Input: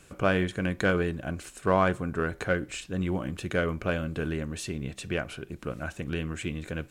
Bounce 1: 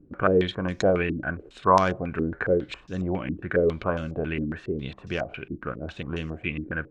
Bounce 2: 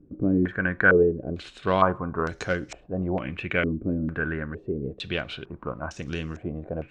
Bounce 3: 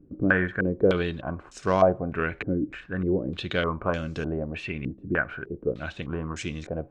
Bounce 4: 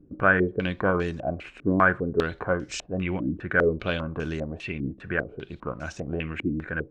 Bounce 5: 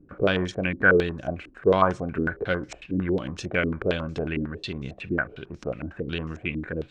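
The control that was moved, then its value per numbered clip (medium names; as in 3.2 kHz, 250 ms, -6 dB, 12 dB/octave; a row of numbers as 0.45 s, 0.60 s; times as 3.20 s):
step-sequenced low-pass, rate: 7.3 Hz, 2.2 Hz, 3.3 Hz, 5 Hz, 11 Hz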